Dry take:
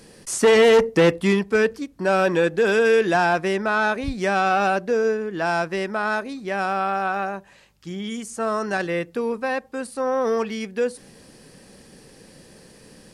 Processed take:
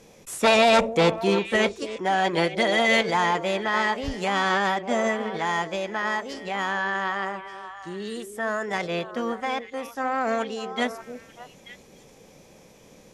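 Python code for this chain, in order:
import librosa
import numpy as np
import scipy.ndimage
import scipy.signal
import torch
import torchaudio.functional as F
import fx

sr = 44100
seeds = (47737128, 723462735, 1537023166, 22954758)

y = fx.formant_shift(x, sr, semitones=4)
y = scipy.signal.sosfilt(scipy.signal.butter(2, 8500.0, 'lowpass', fs=sr, output='sos'), y)
y = fx.echo_stepped(y, sr, ms=295, hz=370.0, octaves=1.4, feedback_pct=70, wet_db=-7.0)
y = y * 10.0 ** (-3.5 / 20.0)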